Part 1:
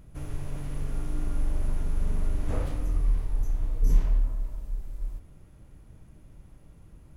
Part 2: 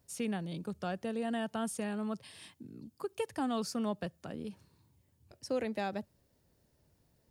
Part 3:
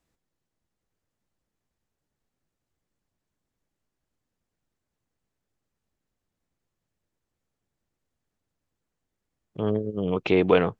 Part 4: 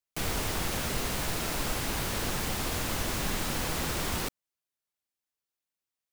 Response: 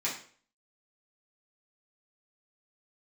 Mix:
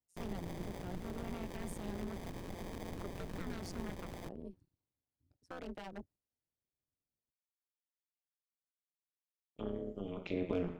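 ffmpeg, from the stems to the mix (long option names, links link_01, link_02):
-filter_complex "[1:a]afwtdn=0.00398,agate=range=-6dB:threshold=-57dB:ratio=16:detection=peak,aeval=exprs='0.0251*(abs(mod(val(0)/0.0251+3,4)-2)-1)':channel_layout=same,volume=-2dB[link_01];[2:a]agate=range=-33dB:threshold=-33dB:ratio=3:detection=peak,highshelf=frequency=2200:gain=9.5,asoftclip=type=hard:threshold=-5.5dB,volume=-12dB,asplit=2[link_02][link_03];[link_03]volume=-4dB[link_04];[3:a]acrusher=samples=32:mix=1:aa=0.000001,volume=-9dB[link_05];[4:a]atrim=start_sample=2205[link_06];[link_04][link_06]afir=irnorm=-1:irlink=0[link_07];[link_01][link_02][link_05][link_07]amix=inputs=4:normalize=0,acrossover=split=370[link_08][link_09];[link_09]acompressor=threshold=-42dB:ratio=10[link_10];[link_08][link_10]amix=inputs=2:normalize=0,tremolo=f=180:d=0.947"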